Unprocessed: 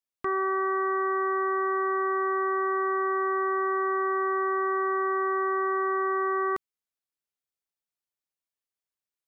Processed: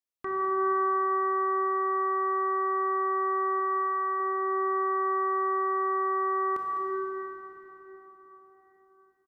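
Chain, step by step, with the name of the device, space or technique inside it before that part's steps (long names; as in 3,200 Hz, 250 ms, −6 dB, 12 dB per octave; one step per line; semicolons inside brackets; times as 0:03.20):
0:03.59–0:04.20: dynamic equaliser 600 Hz, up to −5 dB, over −44 dBFS, Q 1.2
cave (single-tap delay 205 ms −13 dB; convolution reverb RT60 4.7 s, pre-delay 21 ms, DRR −2 dB)
level −5 dB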